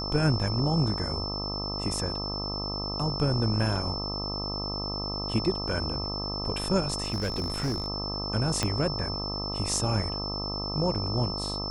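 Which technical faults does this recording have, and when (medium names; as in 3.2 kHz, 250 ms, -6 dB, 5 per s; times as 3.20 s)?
buzz 50 Hz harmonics 26 -35 dBFS
whine 5.3 kHz -33 dBFS
7.06–7.88 s: clipped -24.5 dBFS
8.63 s: pop -11 dBFS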